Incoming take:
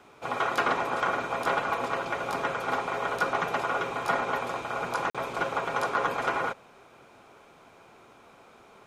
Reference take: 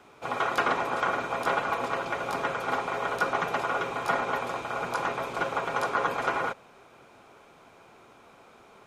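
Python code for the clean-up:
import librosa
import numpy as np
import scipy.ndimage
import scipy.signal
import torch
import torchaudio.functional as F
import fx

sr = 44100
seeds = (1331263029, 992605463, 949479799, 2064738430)

y = fx.fix_declip(x, sr, threshold_db=-16.0)
y = fx.fix_interpolate(y, sr, at_s=(5.1,), length_ms=46.0)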